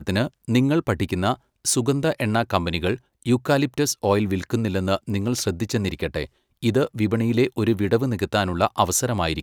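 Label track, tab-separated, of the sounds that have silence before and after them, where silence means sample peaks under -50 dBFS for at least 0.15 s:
1.650000	3.000000	sound
3.230000	6.270000	sound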